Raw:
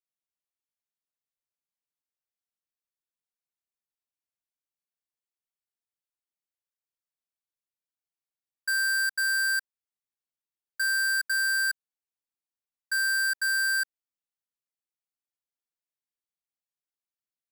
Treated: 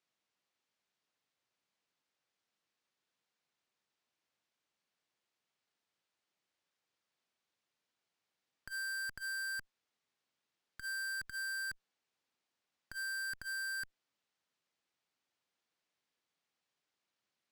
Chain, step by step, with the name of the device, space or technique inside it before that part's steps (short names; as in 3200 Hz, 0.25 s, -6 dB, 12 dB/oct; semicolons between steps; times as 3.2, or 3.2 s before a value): valve radio (BPF 120–5000 Hz; tube stage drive 54 dB, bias 0.65; core saturation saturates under 140 Hz); gain +15 dB